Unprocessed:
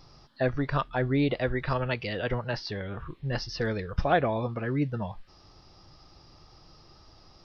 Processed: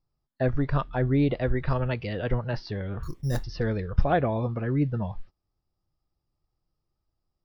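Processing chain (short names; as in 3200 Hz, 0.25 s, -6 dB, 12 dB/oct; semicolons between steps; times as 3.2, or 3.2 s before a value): gate -47 dBFS, range -30 dB; tilt -2 dB/oct; 3.03–3.44 careless resampling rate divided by 8×, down filtered, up hold; gain -1.5 dB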